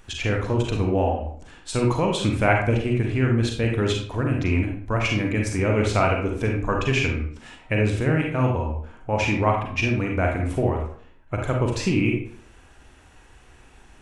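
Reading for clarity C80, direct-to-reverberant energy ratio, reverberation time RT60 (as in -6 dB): 8.5 dB, 0.0 dB, 0.55 s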